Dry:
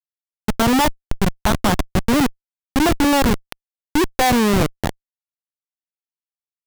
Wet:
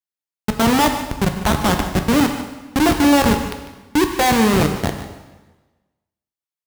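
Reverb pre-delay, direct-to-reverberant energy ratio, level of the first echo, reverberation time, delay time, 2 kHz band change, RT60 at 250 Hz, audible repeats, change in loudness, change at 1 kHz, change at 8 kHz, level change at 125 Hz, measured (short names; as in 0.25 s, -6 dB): 5 ms, 4.5 dB, -14.0 dB, 1.2 s, 0.149 s, +1.5 dB, 1.2 s, 1, +1.5 dB, +1.5 dB, +1.0 dB, +1.0 dB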